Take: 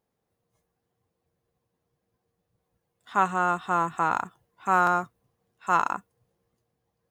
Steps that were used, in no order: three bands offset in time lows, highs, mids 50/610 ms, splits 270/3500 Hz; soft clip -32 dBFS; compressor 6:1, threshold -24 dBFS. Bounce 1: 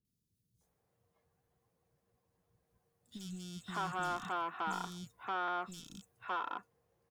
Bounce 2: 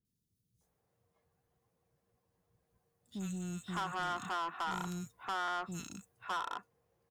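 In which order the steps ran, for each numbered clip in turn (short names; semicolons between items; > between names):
compressor > soft clip > three bands offset in time; three bands offset in time > compressor > soft clip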